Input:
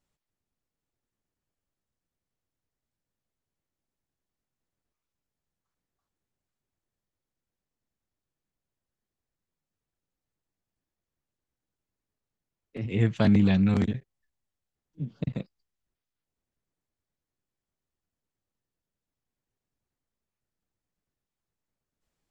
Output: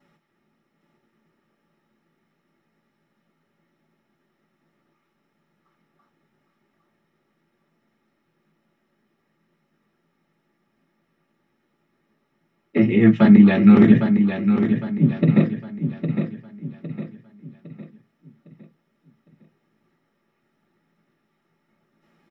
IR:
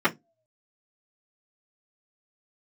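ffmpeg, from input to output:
-filter_complex "[0:a]areverse,acompressor=threshold=-32dB:ratio=6,areverse,aecho=1:1:808|1616|2424|3232|4040:0.422|0.169|0.0675|0.027|0.0108[a];[1:a]atrim=start_sample=2205[b];[a][b]afir=irnorm=-1:irlink=0,volume=5.5dB"

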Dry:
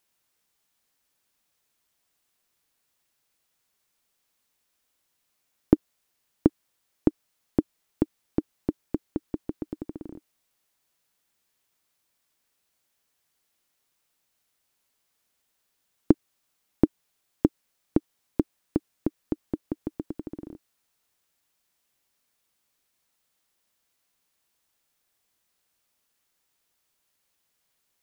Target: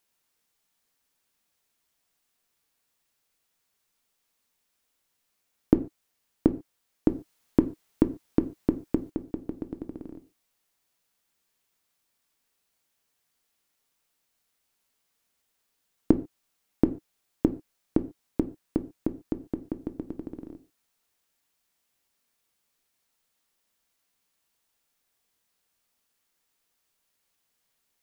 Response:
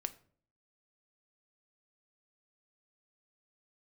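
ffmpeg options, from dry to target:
-filter_complex "[0:a]asettb=1/sr,asplit=3[a][b][c];[a]atrim=end=7.084[d];[b]atrim=start=7.08:end=9.1,asetpts=PTS-STARTPTS,afade=t=in:d=0.004:c=qsin,afade=t=out:st=2.016:d=0.004:c=qsin,acontrast=28[e];[c]atrim=start=9.096[f];[d][e]acrossfade=d=0.004:c1=hsin:c2=qsin[g];[g][f]acrossfade=d=0.004:c1=qsin:c2=hsin[h];[1:a]atrim=start_sample=2205,atrim=end_sample=6615[i];[h][i]afir=irnorm=-1:irlink=0"

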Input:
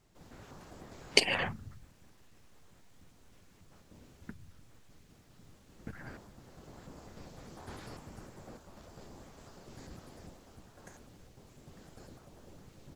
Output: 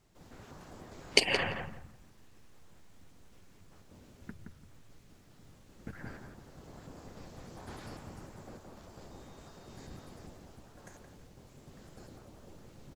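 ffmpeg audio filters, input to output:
-filter_complex "[0:a]asettb=1/sr,asplit=3[a][b][c];[a]atrim=end=9.114[d];[b]atrim=start=9.11:end=10.11,asetpts=PTS-STARTPTS,afade=t=in:d=0.004:c=qsin,afade=t=out:st=0.996:d=0.004:c=qsin,aeval=exprs='val(0)+0.000316*sin(2*PI*3700*n/s)':c=same[e];[c]atrim=start=10.106[f];[d][e]acrossfade=d=0.004:c1=hsin:c2=qsin[g];[g][f]acrossfade=d=0.004:c1=qsin:c2=hsin,asplit=2[h][i];[i]adelay=171,lowpass=f=1.9k:p=1,volume=-5dB,asplit=2[j][k];[k]adelay=171,lowpass=f=1.9k:p=1,volume=0.23,asplit=2[l][m];[m]adelay=171,lowpass=f=1.9k:p=1,volume=0.23[n];[h][j][l][n]amix=inputs=4:normalize=0"

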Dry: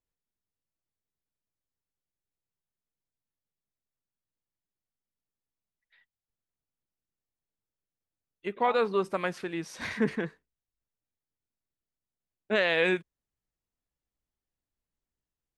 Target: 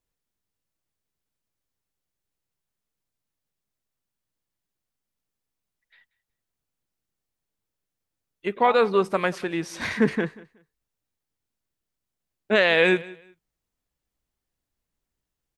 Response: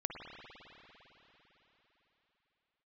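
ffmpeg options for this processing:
-af "aecho=1:1:185|370:0.0891|0.0196,volume=6.5dB"

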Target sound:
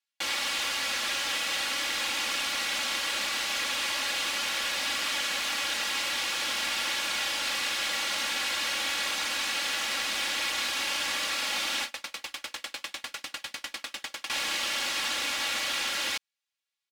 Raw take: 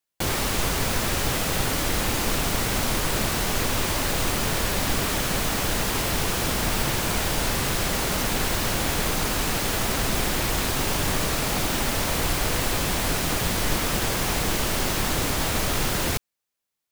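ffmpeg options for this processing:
-filter_complex "[0:a]bandpass=f=3k:t=q:w=0.93:csg=0,aecho=1:1:3.6:0.74,asettb=1/sr,asplit=3[a][b][c];[a]atrim=end=11.844[d];[b]atrim=start=11.84:end=14.3,asetpts=PTS-STARTPTS,afade=t=in:d=0.004:c=qsin,afade=t=out:st=2.456:d=0.004:c=qsin,aeval=exprs='val(0)*pow(10,-35*if(lt(mod(10*n/s,1),2*abs(10)/1000),1-mod(10*n/s,1)/(2*abs(10)/1000),(mod(10*n/s,1)-2*abs(10)/1000)/(1-2*abs(10)/1000))/20)':c=same[e];[c]atrim=start=14.296[f];[d][e]acrossfade=d=0.004:c1=hsin:c2=qsin[g];[g][f]acrossfade=d=0.004:c1=qsin:c2=hsin"

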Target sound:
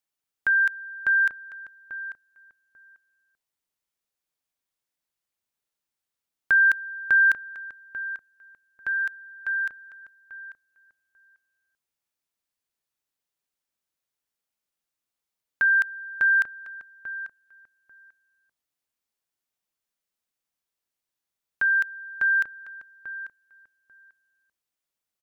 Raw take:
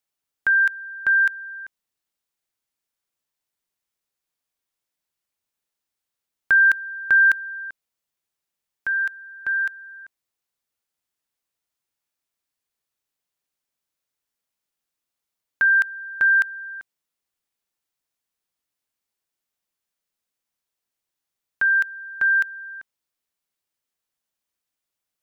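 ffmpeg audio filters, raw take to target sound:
-filter_complex "[0:a]asettb=1/sr,asplit=3[a][b][c];[a]atrim=end=9.154[d];[b]atrim=start=9.15:end=10.03,asetpts=PTS-STARTPTS,afade=t=in:d=0.004:c=qsin,afade=t=out:st=0.876:d=0.004:c=qsin,equalizer=f=230:w=0.72:g=-13.5[e];[c]atrim=start=10.026[f];[d][e]acrossfade=d=0.004:c1=hsin:c2=qsin[g];[g][f]acrossfade=d=0.004:c1=qsin:c2=hsin,asplit=2[h][i];[i]adelay=842,lowpass=f=1.3k:p=1,volume=-10.5dB,asplit=2[j][k];[k]adelay=842,lowpass=f=1.3k:p=1,volume=0.17[l];[h][j][l]amix=inputs=3:normalize=0,volume=-3dB"

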